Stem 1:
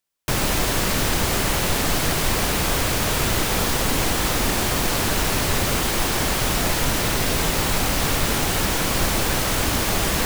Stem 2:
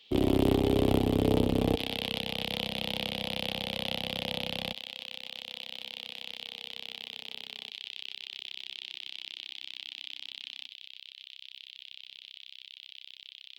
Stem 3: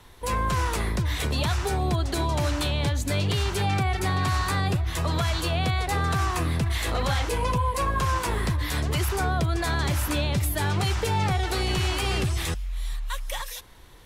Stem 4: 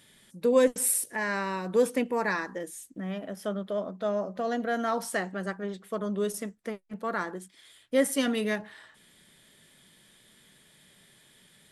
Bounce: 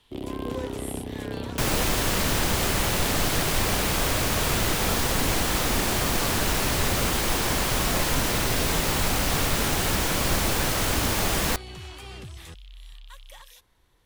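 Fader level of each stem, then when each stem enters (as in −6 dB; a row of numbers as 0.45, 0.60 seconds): −3.0, −8.0, −15.0, −15.0 decibels; 1.30, 0.00, 0.00, 0.00 seconds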